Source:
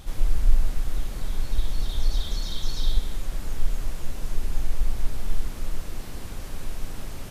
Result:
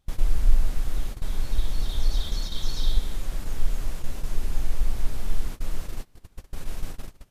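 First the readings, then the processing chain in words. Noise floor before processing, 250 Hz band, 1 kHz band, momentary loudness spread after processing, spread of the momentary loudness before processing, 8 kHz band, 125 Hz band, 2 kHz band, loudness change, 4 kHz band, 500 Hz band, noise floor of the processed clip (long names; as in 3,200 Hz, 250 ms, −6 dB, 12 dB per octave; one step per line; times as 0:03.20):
−35 dBFS, −1.0 dB, −1.0 dB, 13 LU, 10 LU, can't be measured, 0.0 dB, −1.0 dB, 0.0 dB, −0.5 dB, −1.0 dB, −57 dBFS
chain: noise gate −27 dBFS, range −26 dB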